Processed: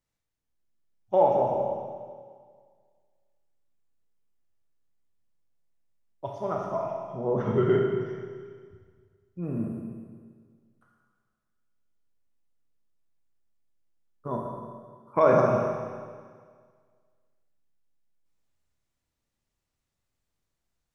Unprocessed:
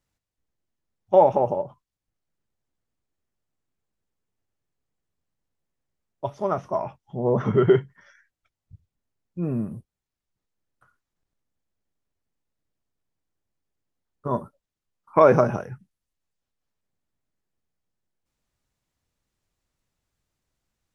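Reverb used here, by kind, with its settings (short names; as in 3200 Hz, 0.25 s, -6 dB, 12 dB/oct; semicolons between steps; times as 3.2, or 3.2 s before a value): Schroeder reverb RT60 1.8 s, combs from 27 ms, DRR 0 dB; gain -6.5 dB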